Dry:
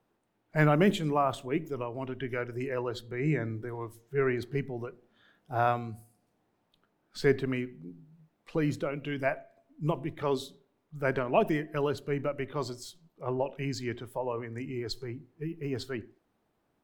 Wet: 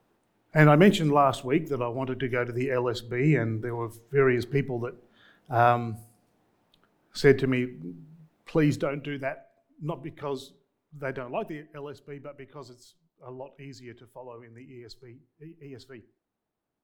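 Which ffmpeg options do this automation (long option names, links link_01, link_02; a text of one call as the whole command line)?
ffmpeg -i in.wav -af "volume=6dB,afade=type=out:start_time=8.69:duration=0.61:silence=0.354813,afade=type=out:start_time=10.97:duration=0.67:silence=0.446684" out.wav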